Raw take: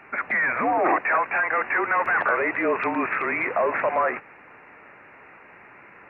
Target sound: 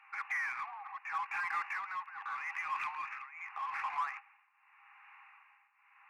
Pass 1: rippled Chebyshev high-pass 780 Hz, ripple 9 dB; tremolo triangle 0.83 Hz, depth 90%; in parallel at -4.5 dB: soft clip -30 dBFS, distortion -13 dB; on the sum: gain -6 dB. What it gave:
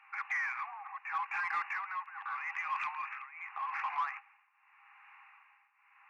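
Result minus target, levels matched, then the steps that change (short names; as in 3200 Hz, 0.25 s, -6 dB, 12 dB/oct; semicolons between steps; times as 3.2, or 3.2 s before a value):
soft clip: distortion -7 dB
change: soft clip -38 dBFS, distortion -6 dB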